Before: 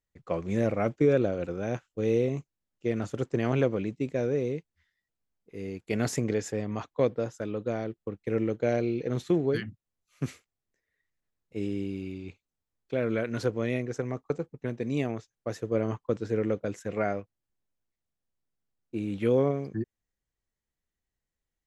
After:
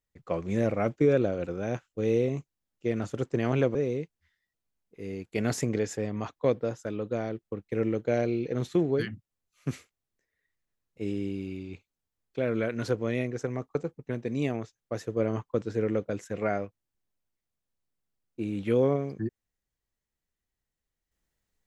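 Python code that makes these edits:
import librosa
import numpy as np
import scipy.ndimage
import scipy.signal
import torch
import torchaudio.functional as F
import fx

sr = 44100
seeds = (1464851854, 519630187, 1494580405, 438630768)

y = fx.edit(x, sr, fx.cut(start_s=3.75, length_s=0.55), tone=tone)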